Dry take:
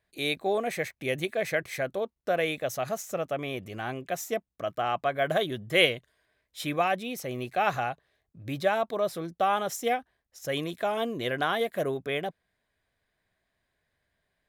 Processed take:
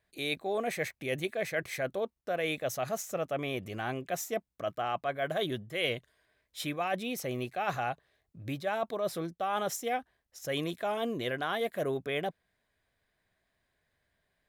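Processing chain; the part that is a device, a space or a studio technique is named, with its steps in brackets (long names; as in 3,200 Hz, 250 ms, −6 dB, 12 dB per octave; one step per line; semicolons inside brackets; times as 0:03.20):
compression on the reversed sound (reversed playback; downward compressor 10 to 1, threshold −28 dBFS, peak gain reduction 12 dB; reversed playback)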